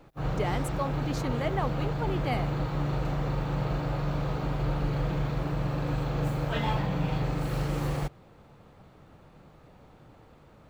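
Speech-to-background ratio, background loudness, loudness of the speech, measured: −4.0 dB, −30.5 LKFS, −34.5 LKFS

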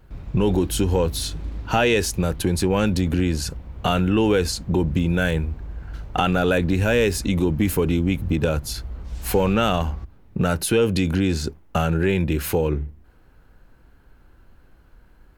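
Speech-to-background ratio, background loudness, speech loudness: 15.0 dB, −37.0 LKFS, −22.0 LKFS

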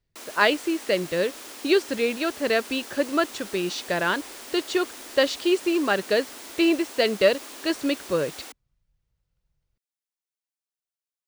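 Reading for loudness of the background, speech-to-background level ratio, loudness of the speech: −39.0 LKFS, 14.0 dB, −25.0 LKFS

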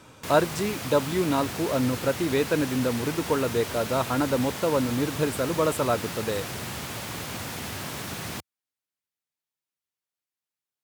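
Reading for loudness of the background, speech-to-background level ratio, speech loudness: −33.5 LKFS, 7.0 dB, −26.5 LKFS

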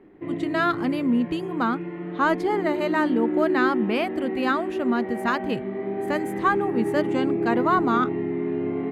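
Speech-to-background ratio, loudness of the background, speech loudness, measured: 2.5 dB, −28.0 LKFS, −25.5 LKFS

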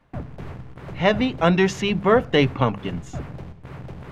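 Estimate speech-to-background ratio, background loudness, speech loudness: 16.5 dB, −37.0 LKFS, −20.5 LKFS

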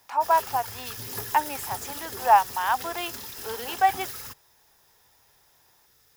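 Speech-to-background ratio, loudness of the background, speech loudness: 9.5 dB, −35.0 LKFS, −25.5 LKFS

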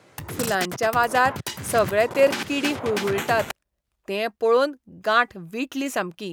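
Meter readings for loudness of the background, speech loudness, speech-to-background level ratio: −31.0 LKFS, −23.5 LKFS, 7.5 dB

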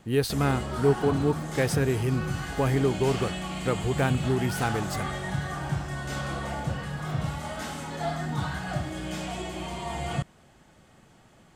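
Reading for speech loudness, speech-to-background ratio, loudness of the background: −27.5 LKFS, 5.0 dB, −32.5 LKFS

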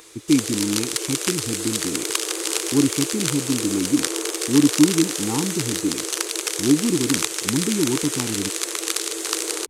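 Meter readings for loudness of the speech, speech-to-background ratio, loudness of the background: −23.5 LKFS, 0.5 dB, −24.0 LKFS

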